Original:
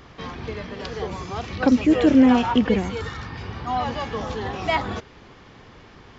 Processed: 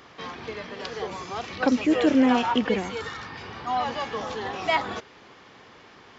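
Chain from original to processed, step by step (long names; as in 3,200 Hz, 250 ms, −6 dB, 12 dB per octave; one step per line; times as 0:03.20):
high-pass filter 410 Hz 6 dB per octave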